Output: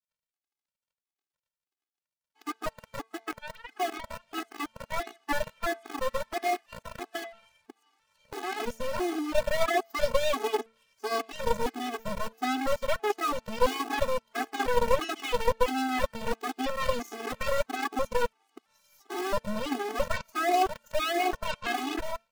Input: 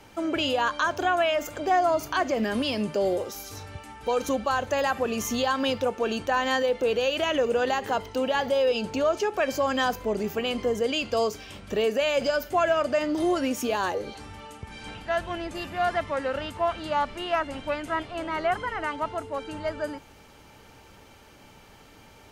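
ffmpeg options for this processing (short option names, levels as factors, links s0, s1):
-filter_complex "[0:a]areverse,acrossover=split=780|5500[s0][s1][s2];[s0]acrusher=bits=4:mix=0:aa=0.000001[s3];[s3][s1][s2]amix=inputs=3:normalize=0,equalizer=f=460:w=0.4:g=6.5,bandreject=f=224.8:t=h:w=4,bandreject=f=449.6:t=h:w=4,bandreject=f=674.4:t=h:w=4,bandreject=f=899.2:t=h:w=4,bandreject=f=1124:t=h:w=4,bandreject=f=1348.8:t=h:w=4,bandreject=f=1573.6:t=h:w=4,bandreject=f=1798.4:t=h:w=4,bandreject=f=2023.2:t=h:w=4,bandreject=f=2248:t=h:w=4,bandreject=f=2472.8:t=h:w=4,bandreject=f=2697.6:t=h:w=4,aeval=exprs='sgn(val(0))*max(abs(val(0))-0.00447,0)':c=same,aeval=exprs='0.447*(cos(1*acos(clip(val(0)/0.447,-1,1)))-cos(1*PI/2))+0.224*(cos(4*acos(clip(val(0)/0.447,-1,1)))-cos(4*PI/2))+0.0316*(cos(6*acos(clip(val(0)/0.447,-1,1)))-cos(6*PI/2))+0.0398*(cos(7*acos(clip(val(0)/0.447,-1,1)))-cos(7*PI/2))':c=same,afftfilt=real='re*gt(sin(2*PI*1.5*pts/sr)*(1-2*mod(floor(b*sr/1024/220),2)),0)':imag='im*gt(sin(2*PI*1.5*pts/sr)*(1-2*mod(floor(b*sr/1024/220),2)),0)':win_size=1024:overlap=0.75,volume=0.422"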